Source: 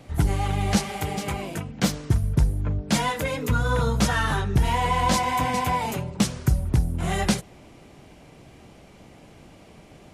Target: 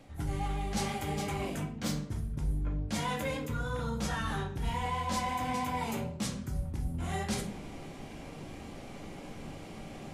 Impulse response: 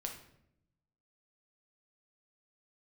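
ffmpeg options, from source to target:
-filter_complex "[0:a]areverse,acompressor=threshold=0.0158:ratio=5,areverse,bandreject=f=60:t=h:w=6,bandreject=f=120:t=h:w=6[s0];[1:a]atrim=start_sample=2205,asetrate=70560,aresample=44100[s1];[s0][s1]afir=irnorm=-1:irlink=0,volume=2.66"

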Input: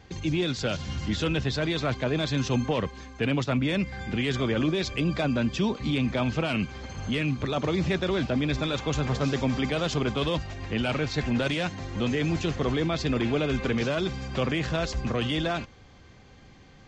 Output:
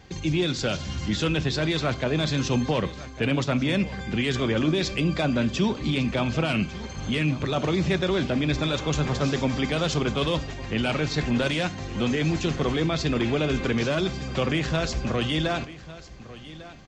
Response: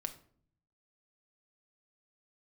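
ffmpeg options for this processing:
-filter_complex "[0:a]aecho=1:1:1150:0.141,asplit=2[s0][s1];[1:a]atrim=start_sample=2205,highshelf=f=5000:g=8.5[s2];[s1][s2]afir=irnorm=-1:irlink=0,volume=0.891[s3];[s0][s3]amix=inputs=2:normalize=0,volume=0.708"

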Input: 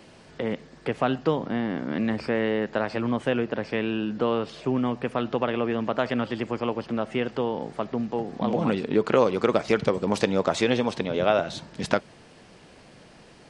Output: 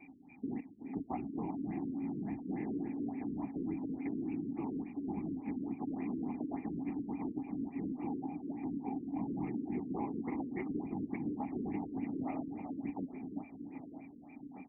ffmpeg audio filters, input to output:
-filter_complex "[0:a]areverse,acompressor=mode=upward:threshold=0.00708:ratio=2.5,areverse,aeval=exprs='val(0)+0.00794*sin(2*PI*2600*n/s)':c=same,bass=f=250:g=13,treble=f=4000:g=-12,asplit=2[s0][s1];[s1]aecho=0:1:351|702|1053|1404:0.299|0.125|0.0527|0.0221[s2];[s0][s2]amix=inputs=2:normalize=0,afftfilt=real='hypot(re,im)*cos(2*PI*random(0))':imag='hypot(re,im)*sin(2*PI*random(1))':win_size=512:overlap=0.75,asplit=3[s3][s4][s5];[s3]bandpass=f=300:t=q:w=8,volume=1[s6];[s4]bandpass=f=870:t=q:w=8,volume=0.501[s7];[s5]bandpass=f=2240:t=q:w=8,volume=0.355[s8];[s6][s7][s8]amix=inputs=3:normalize=0,afftfilt=real='re*lt(hypot(re,im),0.224)':imag='im*lt(hypot(re,im),0.224)':win_size=1024:overlap=0.75,equalizer=f=120:t=o:w=2.6:g=-7,asetrate=40517,aresample=44100,asplit=2[s9][s10];[s10]adelay=1574,volume=0.224,highshelf=f=4000:g=-35.4[s11];[s9][s11]amix=inputs=2:normalize=0,acrossover=split=120|3000[s12][s13][s14];[s13]acompressor=threshold=0.00708:ratio=3[s15];[s12][s15][s14]amix=inputs=3:normalize=0,afftfilt=real='re*lt(b*sr/1024,480*pow(2900/480,0.5+0.5*sin(2*PI*3.5*pts/sr)))':imag='im*lt(b*sr/1024,480*pow(2900/480,0.5+0.5*sin(2*PI*3.5*pts/sr)))':win_size=1024:overlap=0.75,volume=2.37"

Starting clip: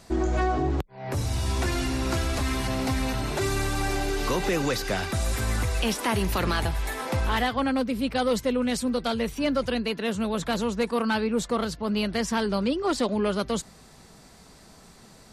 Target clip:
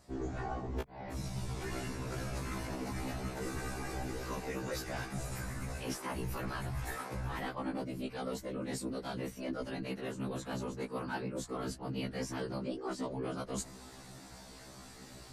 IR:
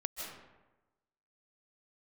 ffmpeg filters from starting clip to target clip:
-af "afftfilt=real='hypot(re,im)*cos(2*PI*random(0))':imag='hypot(re,im)*sin(2*PI*random(1))':win_size=512:overlap=0.75,adynamicequalizer=threshold=0.00178:dfrequency=3500:dqfactor=1.9:tfrequency=3500:tqfactor=1.9:attack=5:release=100:ratio=0.375:range=3.5:mode=cutabove:tftype=bell,areverse,acompressor=threshold=0.00794:ratio=6,areverse,afftfilt=real='re*1.73*eq(mod(b,3),0)':imag='im*1.73*eq(mod(b,3),0)':win_size=2048:overlap=0.75,volume=2.51"

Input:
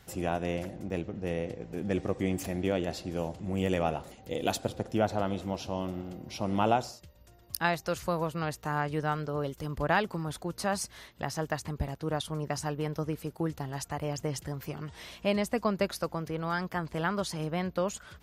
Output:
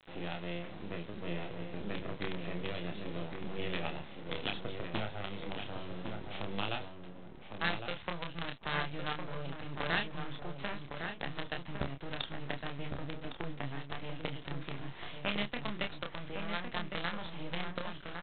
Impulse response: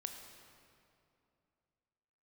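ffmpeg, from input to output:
-filter_complex "[0:a]highpass=120,lowshelf=f=480:g=-3,acrossover=split=170|2000[s0][s1][s2];[s1]acompressor=threshold=0.00891:ratio=8[s3];[s0][s3][s2]amix=inputs=3:normalize=0,asoftclip=type=hard:threshold=0.0398,aresample=8000,acrusher=bits=6:dc=4:mix=0:aa=0.000001,aresample=44100,asplit=2[s4][s5];[s5]adelay=29,volume=0.562[s6];[s4][s6]amix=inputs=2:normalize=0,asplit=2[s7][s8];[s8]adelay=1108,lowpass=f=1700:p=1,volume=0.562,asplit=2[s9][s10];[s10]adelay=1108,lowpass=f=1700:p=1,volume=0.16,asplit=2[s11][s12];[s12]adelay=1108,lowpass=f=1700:p=1,volume=0.16[s13];[s7][s9][s11][s13]amix=inputs=4:normalize=0,volume=1.33"

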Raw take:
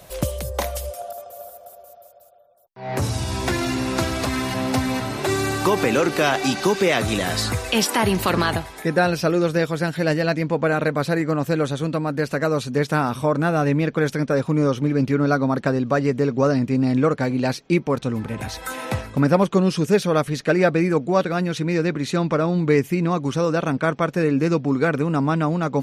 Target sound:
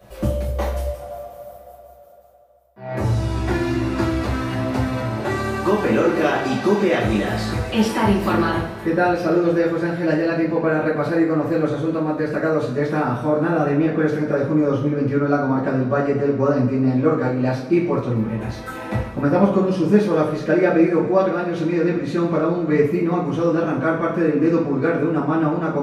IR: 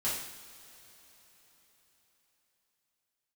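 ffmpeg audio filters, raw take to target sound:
-filter_complex "[0:a]equalizer=f=10000:t=o:w=2.9:g=-14[s0];[1:a]atrim=start_sample=2205,asetrate=66150,aresample=44100[s1];[s0][s1]afir=irnorm=-1:irlink=0"

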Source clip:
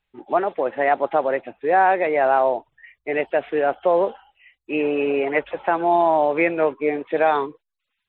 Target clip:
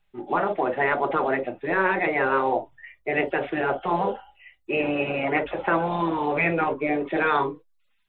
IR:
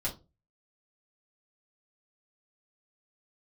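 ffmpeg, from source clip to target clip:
-filter_complex "[0:a]asplit=2[s0][s1];[s1]equalizer=f=3300:t=o:w=2:g=-8.5[s2];[1:a]atrim=start_sample=2205,atrim=end_sample=3087[s3];[s2][s3]afir=irnorm=-1:irlink=0,volume=0.596[s4];[s0][s4]amix=inputs=2:normalize=0,afftfilt=real='re*lt(hypot(re,im),0.794)':imag='im*lt(hypot(re,im),0.794)':win_size=1024:overlap=0.75"

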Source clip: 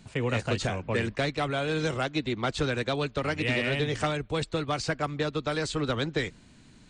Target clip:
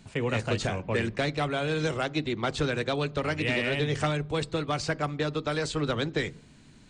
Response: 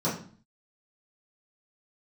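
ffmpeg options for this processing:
-filter_complex "[0:a]asplit=2[s0][s1];[1:a]atrim=start_sample=2205,asetrate=37044,aresample=44100[s2];[s1][s2]afir=irnorm=-1:irlink=0,volume=0.0316[s3];[s0][s3]amix=inputs=2:normalize=0"

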